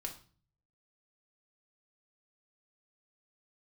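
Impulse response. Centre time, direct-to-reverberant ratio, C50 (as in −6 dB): 13 ms, 1.0 dB, 10.5 dB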